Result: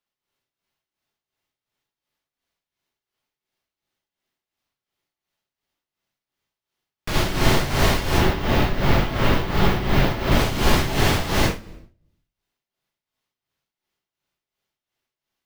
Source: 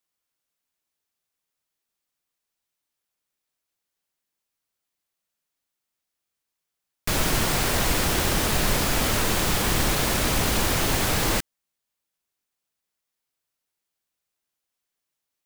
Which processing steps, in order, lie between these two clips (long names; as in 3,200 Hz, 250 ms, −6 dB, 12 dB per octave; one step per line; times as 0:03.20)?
running median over 5 samples
0:08.10–0:10.32: parametric band 8,700 Hz −14 dB 1.5 octaves
convolution reverb RT60 0.65 s, pre-delay 59 ms, DRR −5.5 dB
amplitude tremolo 2.8 Hz, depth 71%